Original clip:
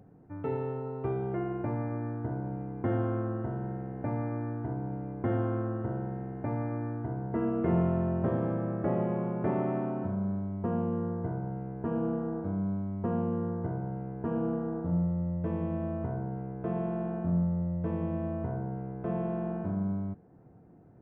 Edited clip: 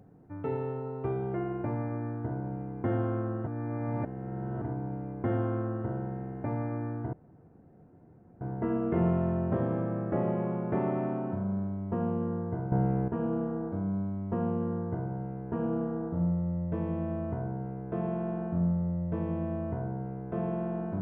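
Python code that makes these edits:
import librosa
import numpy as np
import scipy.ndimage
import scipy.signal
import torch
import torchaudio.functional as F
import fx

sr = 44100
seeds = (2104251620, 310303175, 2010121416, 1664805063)

y = fx.edit(x, sr, fx.reverse_span(start_s=3.47, length_s=1.15),
    fx.insert_room_tone(at_s=7.13, length_s=1.28),
    fx.clip_gain(start_s=11.44, length_s=0.36, db=10.0), tone=tone)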